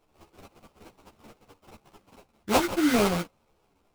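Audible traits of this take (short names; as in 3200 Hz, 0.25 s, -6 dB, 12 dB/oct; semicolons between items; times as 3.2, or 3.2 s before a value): aliases and images of a low sample rate 1800 Hz, jitter 20%; a shimmering, thickened sound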